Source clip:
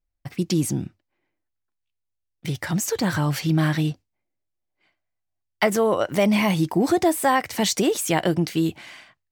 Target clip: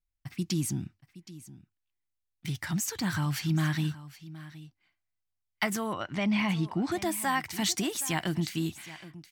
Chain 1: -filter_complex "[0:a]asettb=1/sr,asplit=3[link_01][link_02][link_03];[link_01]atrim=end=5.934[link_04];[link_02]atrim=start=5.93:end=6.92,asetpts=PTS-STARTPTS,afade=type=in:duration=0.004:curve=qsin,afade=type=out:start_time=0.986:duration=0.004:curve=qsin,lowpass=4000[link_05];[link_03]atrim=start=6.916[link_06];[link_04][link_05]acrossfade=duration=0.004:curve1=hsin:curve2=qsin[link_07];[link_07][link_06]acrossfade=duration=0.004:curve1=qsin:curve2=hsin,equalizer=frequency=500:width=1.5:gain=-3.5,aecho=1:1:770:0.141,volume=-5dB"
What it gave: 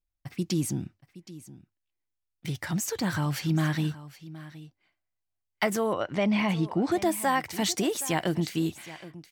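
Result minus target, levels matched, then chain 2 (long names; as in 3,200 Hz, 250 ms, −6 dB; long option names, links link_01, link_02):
500 Hz band +5.5 dB
-filter_complex "[0:a]asettb=1/sr,asplit=3[link_01][link_02][link_03];[link_01]atrim=end=5.934[link_04];[link_02]atrim=start=5.93:end=6.92,asetpts=PTS-STARTPTS,afade=type=in:duration=0.004:curve=qsin,afade=type=out:start_time=0.986:duration=0.004:curve=qsin,lowpass=4000[link_05];[link_03]atrim=start=6.916[link_06];[link_04][link_05]acrossfade=duration=0.004:curve1=hsin:curve2=qsin[link_07];[link_07][link_06]acrossfade=duration=0.004:curve1=qsin:curve2=hsin,equalizer=frequency=500:width=1.5:gain=-15.5,aecho=1:1:770:0.141,volume=-5dB"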